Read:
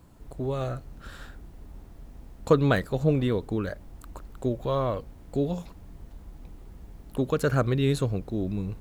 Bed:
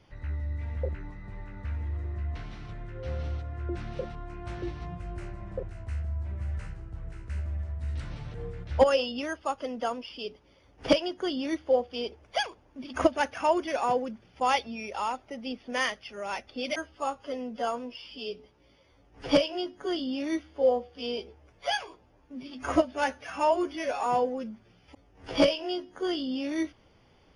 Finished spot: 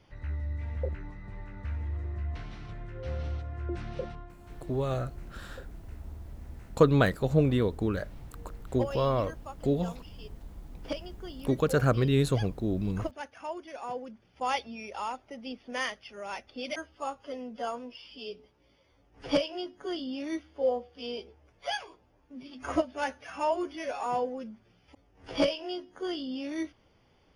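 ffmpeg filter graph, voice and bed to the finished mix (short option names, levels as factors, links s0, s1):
-filter_complex "[0:a]adelay=4300,volume=0.944[s0];[1:a]volume=2.51,afade=t=out:st=4.1:d=0.26:silence=0.251189,afade=t=in:st=13.73:d=0.87:silence=0.354813[s1];[s0][s1]amix=inputs=2:normalize=0"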